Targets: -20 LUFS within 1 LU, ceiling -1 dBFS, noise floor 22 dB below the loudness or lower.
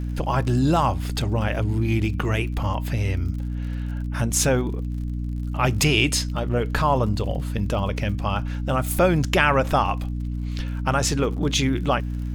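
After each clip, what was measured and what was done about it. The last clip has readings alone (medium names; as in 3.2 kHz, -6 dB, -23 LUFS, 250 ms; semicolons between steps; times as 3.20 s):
tick rate 49 per s; hum 60 Hz; highest harmonic 300 Hz; hum level -25 dBFS; loudness -23.5 LUFS; peak level -3.5 dBFS; loudness target -20.0 LUFS
-> de-click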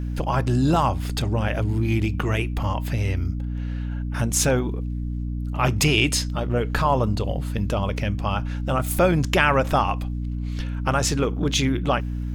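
tick rate 0.97 per s; hum 60 Hz; highest harmonic 300 Hz; hum level -25 dBFS
-> de-hum 60 Hz, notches 5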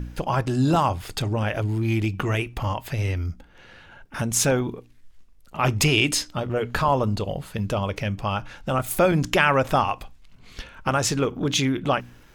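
hum not found; loudness -24.0 LUFS; peak level -4.0 dBFS; loudness target -20.0 LUFS
-> trim +4 dB; peak limiter -1 dBFS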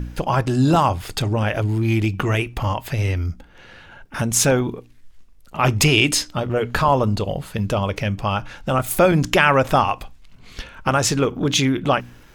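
loudness -20.0 LUFS; peak level -1.0 dBFS; noise floor -47 dBFS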